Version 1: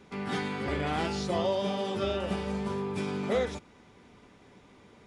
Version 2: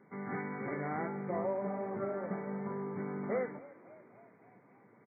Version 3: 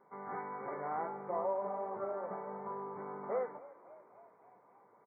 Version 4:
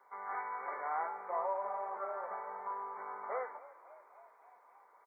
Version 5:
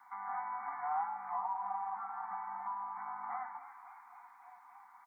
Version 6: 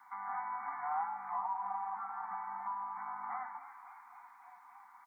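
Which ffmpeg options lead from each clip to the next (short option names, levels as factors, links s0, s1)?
-filter_complex "[0:a]afftfilt=real='re*between(b*sr/4096,100,2300)':imag='im*between(b*sr/4096,100,2300)':win_size=4096:overlap=0.75,asplit=6[s0][s1][s2][s3][s4][s5];[s1]adelay=278,afreqshift=58,volume=0.112[s6];[s2]adelay=556,afreqshift=116,volume=0.0676[s7];[s3]adelay=834,afreqshift=174,volume=0.0403[s8];[s4]adelay=1112,afreqshift=232,volume=0.0243[s9];[s5]adelay=1390,afreqshift=290,volume=0.0146[s10];[s0][s6][s7][s8][s9][s10]amix=inputs=6:normalize=0,volume=0.501"
-af "equalizer=f=125:t=o:w=1:g=-8,equalizer=f=250:t=o:w=1:g=-8,equalizer=f=500:t=o:w=1:g=4,equalizer=f=1000:t=o:w=1:g=11,equalizer=f=2000:t=o:w=1:g=-8,volume=0.562"
-af "highpass=950,volume=2"
-filter_complex "[0:a]acrossover=split=350|610|810[s0][s1][s2][s3];[s3]acompressor=threshold=0.00224:ratio=6[s4];[s0][s1][s2][s4]amix=inputs=4:normalize=0,afftfilt=real='re*(1-between(b*sr/4096,290,710))':imag='im*(1-between(b*sr/4096,290,710))':win_size=4096:overlap=0.75,volume=1.88"
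-af "equalizer=f=610:t=o:w=0.41:g=-9.5,volume=1.19"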